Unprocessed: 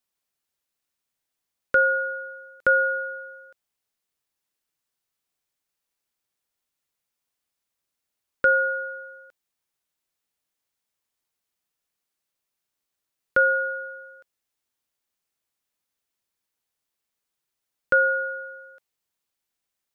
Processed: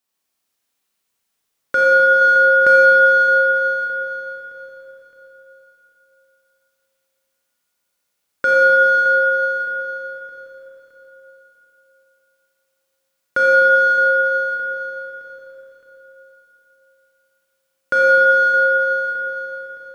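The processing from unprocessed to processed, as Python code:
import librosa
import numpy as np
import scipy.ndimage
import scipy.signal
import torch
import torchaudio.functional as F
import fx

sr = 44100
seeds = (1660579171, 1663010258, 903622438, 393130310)

p1 = fx.low_shelf(x, sr, hz=120.0, db=-6.0)
p2 = p1 + fx.echo_feedback(p1, sr, ms=616, feedback_pct=38, wet_db=-14.0, dry=0)
p3 = fx.dynamic_eq(p2, sr, hz=450.0, q=4.0, threshold_db=-44.0, ratio=4.0, max_db=-6)
p4 = np.clip(p3, -10.0 ** (-23.5 / 20.0), 10.0 ** (-23.5 / 20.0))
p5 = p3 + F.gain(torch.from_numpy(p4), -8.0).numpy()
p6 = fx.rev_schroeder(p5, sr, rt60_s=3.7, comb_ms=28, drr_db=-5.0)
y = fx.env_flatten(p6, sr, amount_pct=50, at=(2.21, 2.76))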